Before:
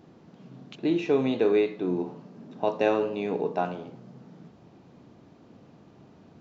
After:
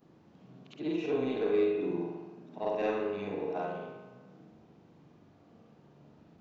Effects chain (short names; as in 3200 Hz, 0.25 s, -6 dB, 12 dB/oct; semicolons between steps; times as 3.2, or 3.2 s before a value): short-time reversal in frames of 0.139 s; soft clip -17 dBFS, distortion -23 dB; spring tank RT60 1.3 s, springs 41 ms, chirp 65 ms, DRR 2.5 dB; gain -4.5 dB